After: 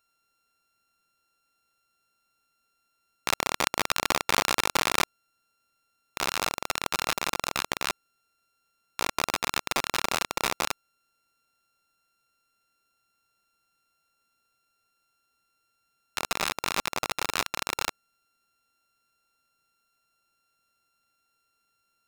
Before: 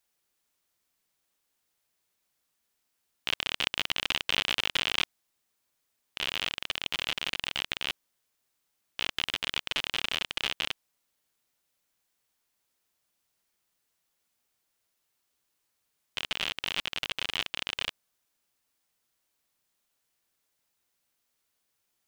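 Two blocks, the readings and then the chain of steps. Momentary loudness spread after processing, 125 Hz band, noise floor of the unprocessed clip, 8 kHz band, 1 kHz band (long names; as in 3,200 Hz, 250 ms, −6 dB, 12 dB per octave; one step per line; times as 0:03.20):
8 LU, +5.5 dB, −79 dBFS, +12.0 dB, +11.5 dB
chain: samples sorted by size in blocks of 32 samples
highs frequency-modulated by the lows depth 0.19 ms
level +3.5 dB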